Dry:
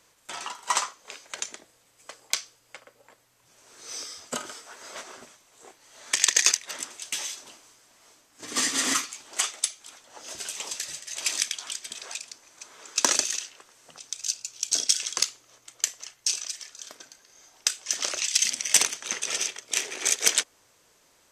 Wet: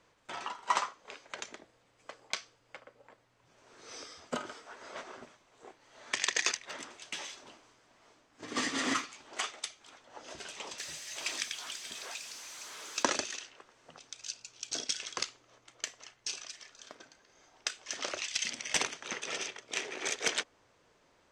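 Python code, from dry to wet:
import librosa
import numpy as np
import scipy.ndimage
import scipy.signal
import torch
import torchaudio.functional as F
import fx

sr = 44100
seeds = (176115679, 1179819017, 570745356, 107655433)

y = fx.crossing_spikes(x, sr, level_db=-25.5, at=(10.78, 13.03))
y = fx.spacing_loss(y, sr, db_at_10k=21)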